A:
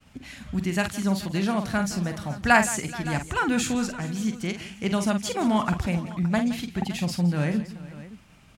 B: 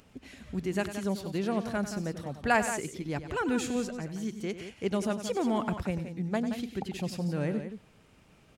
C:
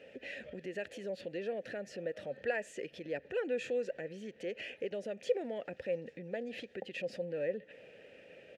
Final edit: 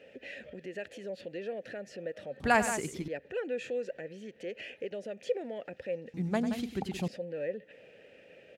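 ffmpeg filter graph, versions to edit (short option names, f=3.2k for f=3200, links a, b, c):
-filter_complex "[1:a]asplit=2[a][b];[2:a]asplit=3[c][d][e];[c]atrim=end=2.402[f];[a]atrim=start=2.398:end=3.082[g];[d]atrim=start=3.078:end=6.142[h];[b]atrim=start=6.138:end=7.082[i];[e]atrim=start=7.078[j];[f][g]acrossfade=d=0.004:c1=hsin:c2=hsin[k];[k][h]acrossfade=d=0.004:c1=hsin:c2=hsin[l];[l][i]acrossfade=d=0.004:c1=hsin:c2=hsin[m];[m][j]acrossfade=d=0.004:c1=hsin:c2=hsin"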